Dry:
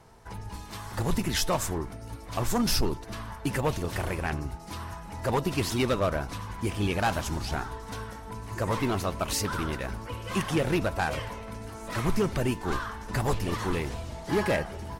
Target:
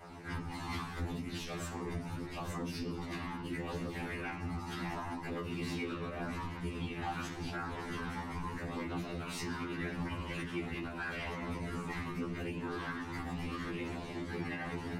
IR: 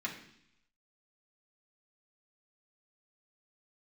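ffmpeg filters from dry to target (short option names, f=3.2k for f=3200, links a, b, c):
-filter_complex "[0:a]areverse,acompressor=threshold=-36dB:ratio=10,areverse,highshelf=f=4.9k:g=-12,bandreject=f=60:t=h:w=6,bandreject=f=120:t=h:w=6,bandreject=f=180:t=h:w=6,bandreject=f=240:t=h:w=6,bandreject=f=300:t=h:w=6,bandreject=f=360:t=h:w=6,bandreject=f=420:t=h:w=6,bandreject=f=480:t=h:w=6,bandreject=f=540:t=h:w=6,bandreject=f=600:t=h:w=6,flanger=delay=0.1:depth=1:regen=-33:speed=0.79:shape=triangular,highshelf=f=2.4k:g=7[a];[1:a]atrim=start_sample=2205,asetrate=48510,aresample=44100[b];[a][b]afir=irnorm=-1:irlink=0,afftfilt=real='hypot(re,im)*cos(2*PI*random(0))':imag='hypot(re,im)*sin(2*PI*random(1))':win_size=512:overlap=0.75,alimiter=level_in=20dB:limit=-24dB:level=0:latency=1:release=178,volume=-20dB,afftfilt=real='re*2*eq(mod(b,4),0)':imag='im*2*eq(mod(b,4),0)':win_size=2048:overlap=0.75,volume=16.5dB"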